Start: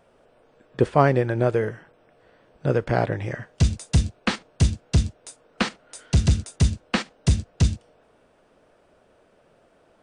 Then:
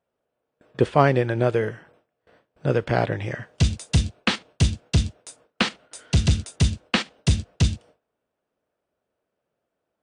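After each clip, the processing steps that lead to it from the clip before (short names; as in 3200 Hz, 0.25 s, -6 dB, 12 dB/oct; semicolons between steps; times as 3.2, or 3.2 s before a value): HPF 50 Hz 12 dB/oct; dynamic EQ 3200 Hz, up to +6 dB, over -47 dBFS, Q 1.3; gate with hold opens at -46 dBFS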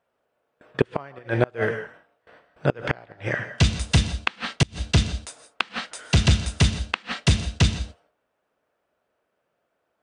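bell 1500 Hz +8.5 dB 2.9 oct; non-linear reverb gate 0.19 s rising, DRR 11.5 dB; flipped gate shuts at -5 dBFS, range -29 dB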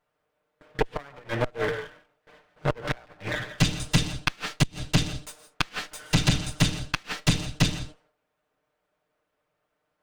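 minimum comb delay 6.6 ms; gain -1 dB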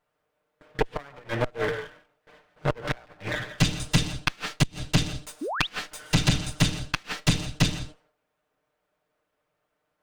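painted sound rise, 5.41–5.67, 250–4000 Hz -30 dBFS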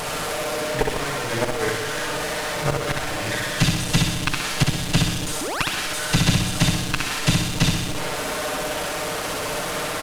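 delta modulation 64 kbps, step -24.5 dBFS; added noise pink -48 dBFS; on a send: feedback echo 64 ms, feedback 51%, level -3.5 dB; on the sum: gain +2 dB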